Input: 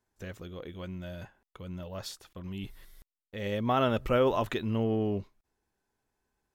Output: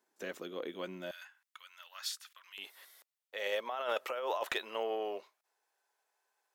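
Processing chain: high-pass 260 Hz 24 dB/octave, from 1.11 s 1.3 kHz, from 2.58 s 540 Hz; compressor with a negative ratio -34 dBFS, ratio -1; hard clipper -23.5 dBFS, distortion -26 dB

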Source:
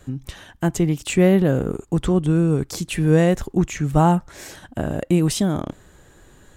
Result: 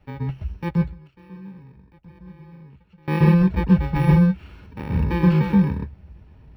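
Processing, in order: bit-reversed sample order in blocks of 64 samples; 0.71–3.08 s: inverted gate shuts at -22 dBFS, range -27 dB; distance through air 480 m; reverberation RT60 0.10 s, pre-delay 124 ms, DRR 3 dB; trim -7 dB

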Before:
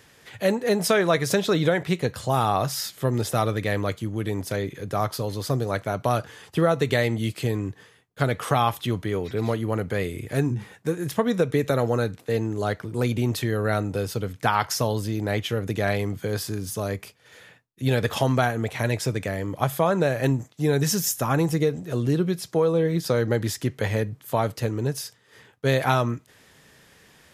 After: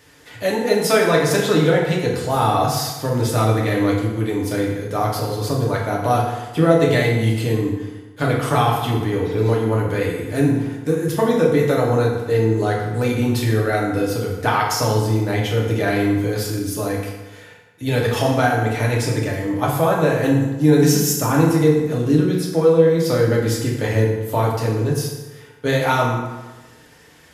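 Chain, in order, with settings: FDN reverb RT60 1.2 s, low-frequency decay 0.95×, high-frequency decay 0.7×, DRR -3.5 dB

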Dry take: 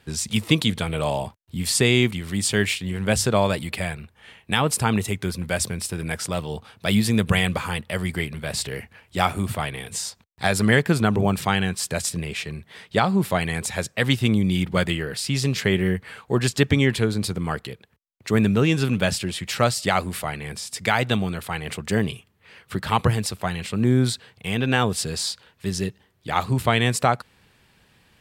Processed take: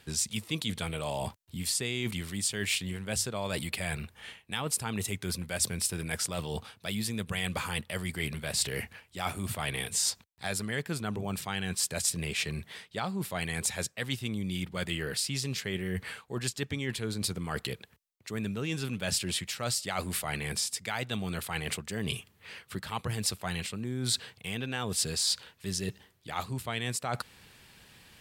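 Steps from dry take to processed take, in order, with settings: reverse; compression 6:1, threshold -32 dBFS, peak gain reduction 18.5 dB; reverse; treble shelf 2.7 kHz +7.5 dB

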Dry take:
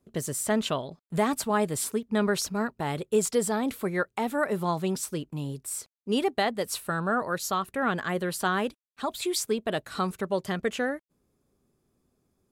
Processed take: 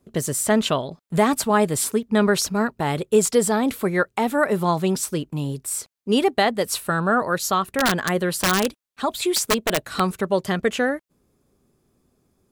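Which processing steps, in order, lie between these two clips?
7.77–10.00 s: integer overflow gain 19 dB; trim +7 dB

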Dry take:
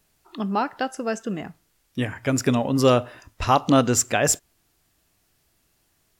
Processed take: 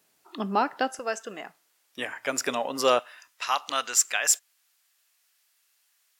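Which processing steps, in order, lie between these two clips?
high-pass 250 Hz 12 dB/octave, from 0.99 s 600 Hz, from 2.99 s 1.4 kHz

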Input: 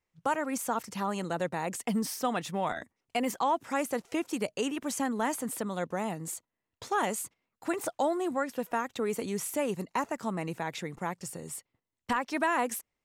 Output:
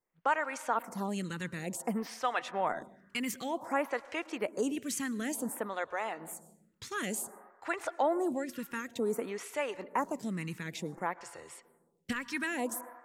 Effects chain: peaking EQ 1.9 kHz +4.5 dB 1.1 oct; reverberation RT60 1.4 s, pre-delay 98 ms, DRR 18 dB; lamp-driven phase shifter 0.55 Hz

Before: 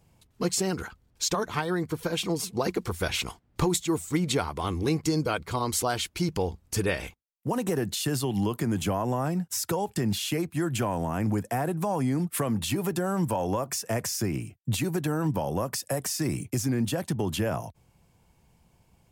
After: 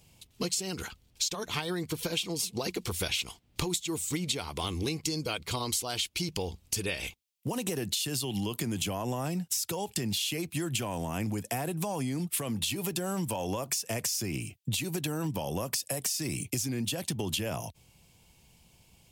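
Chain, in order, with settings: resonant high shelf 2.1 kHz +8.5 dB, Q 1.5; compression, threshold -29 dBFS, peak gain reduction 14 dB

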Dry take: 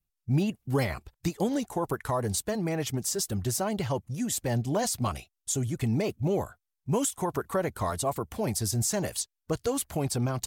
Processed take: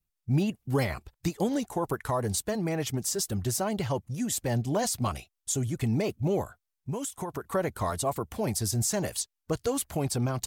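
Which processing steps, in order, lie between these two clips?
6.41–7.52 s: compression 5:1, threshold -31 dBFS, peak gain reduction 8 dB

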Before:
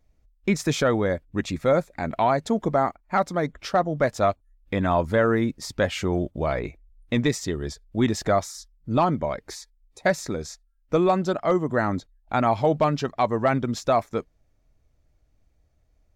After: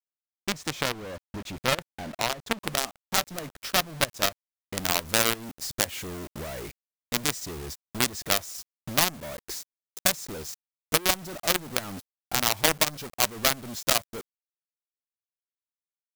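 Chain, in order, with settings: companded quantiser 2-bit; transient shaper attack +4 dB, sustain -6 dB; treble shelf 6.7 kHz -4.5 dB, from 2.63 s +4 dB, from 4.77 s +9 dB; trim -11 dB

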